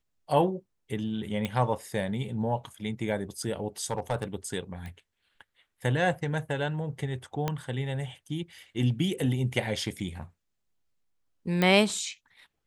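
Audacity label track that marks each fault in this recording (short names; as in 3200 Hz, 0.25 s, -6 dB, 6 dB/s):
1.450000	1.450000	pop -18 dBFS
3.910000	4.240000	clipped -21.5 dBFS
4.860000	4.860000	pop -28 dBFS
7.480000	7.480000	pop -14 dBFS
11.620000	11.620000	pop -12 dBFS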